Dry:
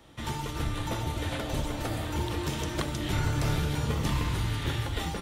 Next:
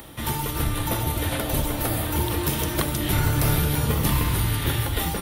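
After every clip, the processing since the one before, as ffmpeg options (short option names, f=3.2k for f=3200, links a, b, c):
-af "aexciter=amount=6.6:drive=4.6:freq=9.7k,acompressor=mode=upward:threshold=-43dB:ratio=2.5,volume=6dB"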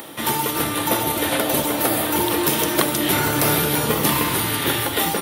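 -af "highpass=290,lowshelf=f=370:g=3.5,volume=7dB"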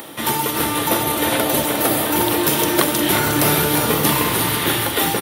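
-af "aecho=1:1:358:0.422,volume=1.5dB"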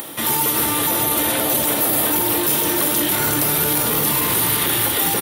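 -af "alimiter=limit=-13dB:level=0:latency=1:release=11,crystalizer=i=1:c=0"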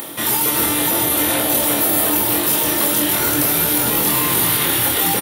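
-filter_complex "[0:a]asplit=2[a][b];[b]adelay=24,volume=-3.5dB[c];[a][c]amix=inputs=2:normalize=0"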